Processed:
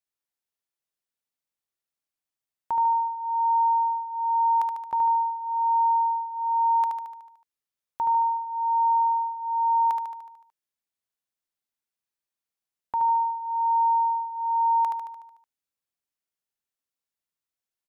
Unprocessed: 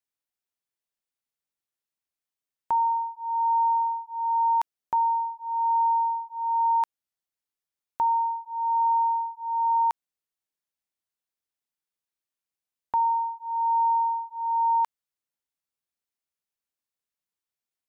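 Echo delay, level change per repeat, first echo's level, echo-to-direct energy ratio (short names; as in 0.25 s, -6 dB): 74 ms, -4.5 dB, -5.0 dB, -3.0 dB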